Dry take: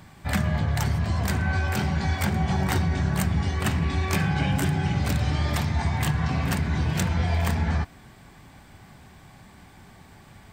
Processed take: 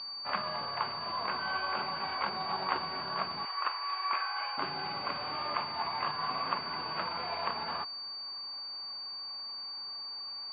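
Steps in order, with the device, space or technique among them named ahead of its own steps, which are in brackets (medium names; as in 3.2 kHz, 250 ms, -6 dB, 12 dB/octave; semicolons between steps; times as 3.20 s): 3.45–4.58 s: Chebyshev band-pass 1–9.9 kHz, order 2; toy sound module (decimation joined by straight lines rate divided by 6×; class-D stage that switches slowly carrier 4.6 kHz; cabinet simulation 700–4800 Hz, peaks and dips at 750 Hz -4 dB, 1.1 kHz +8 dB, 1.8 kHz -8 dB, 2.6 kHz +3 dB, 4.4 kHz -3 dB)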